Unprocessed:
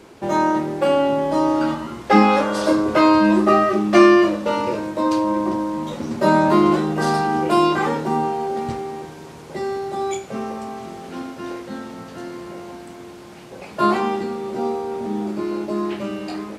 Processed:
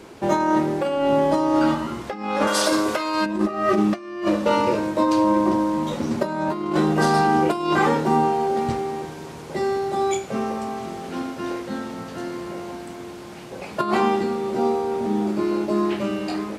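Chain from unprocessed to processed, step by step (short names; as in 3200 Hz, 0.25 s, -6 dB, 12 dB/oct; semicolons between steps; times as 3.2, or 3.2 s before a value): 2.47–3.26 tilt +3 dB/oct; negative-ratio compressor -19 dBFS, ratio -0.5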